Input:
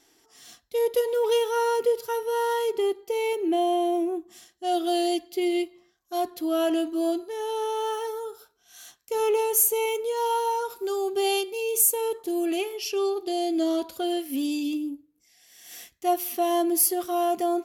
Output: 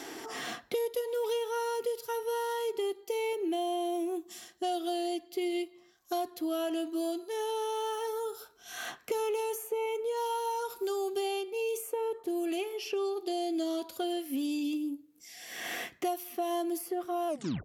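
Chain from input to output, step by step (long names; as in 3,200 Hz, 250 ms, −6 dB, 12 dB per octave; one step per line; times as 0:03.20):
turntable brake at the end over 0.37 s
low-shelf EQ 87 Hz −9 dB
multiband upward and downward compressor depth 100%
level −7.5 dB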